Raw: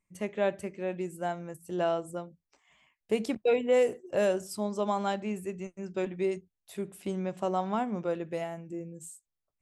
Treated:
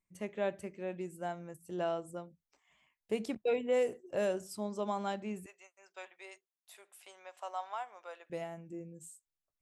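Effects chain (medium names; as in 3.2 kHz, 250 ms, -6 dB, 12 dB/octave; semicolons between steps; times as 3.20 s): 5.46–8.30 s: high-pass 710 Hz 24 dB/octave; trim -6 dB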